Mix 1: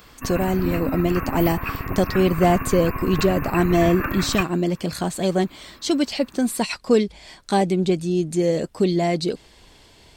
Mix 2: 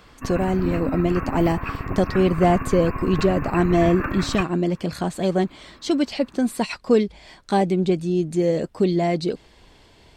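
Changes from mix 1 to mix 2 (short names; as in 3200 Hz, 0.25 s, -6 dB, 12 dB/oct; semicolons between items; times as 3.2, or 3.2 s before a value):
background: add high shelf 5800 Hz -10.5 dB; master: add high shelf 4400 Hz -9 dB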